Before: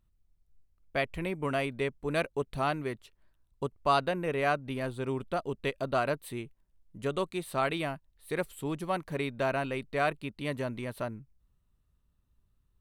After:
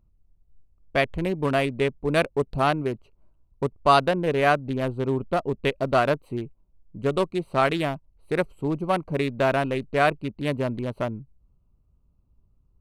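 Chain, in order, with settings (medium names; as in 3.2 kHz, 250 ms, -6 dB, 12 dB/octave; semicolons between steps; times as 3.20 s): local Wiener filter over 25 samples; trim +8.5 dB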